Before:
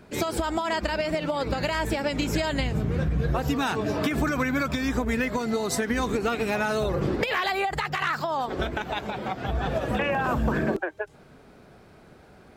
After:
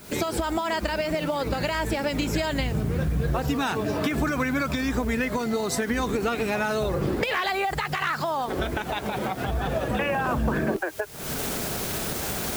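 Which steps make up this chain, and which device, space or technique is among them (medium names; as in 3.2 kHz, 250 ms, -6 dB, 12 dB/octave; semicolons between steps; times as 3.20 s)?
cheap recorder with automatic gain (white noise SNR 24 dB; recorder AGC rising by 68 dB/s)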